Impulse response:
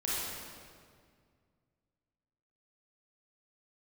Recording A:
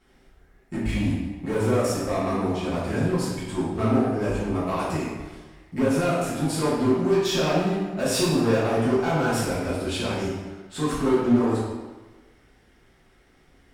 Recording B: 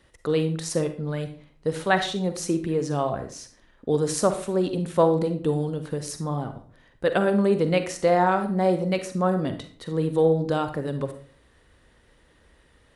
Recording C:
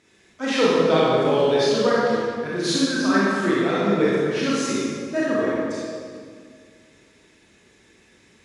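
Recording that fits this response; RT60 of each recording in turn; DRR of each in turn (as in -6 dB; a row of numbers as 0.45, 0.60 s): C; 1.3, 0.45, 2.0 s; -11.0, 8.0, -8.0 dB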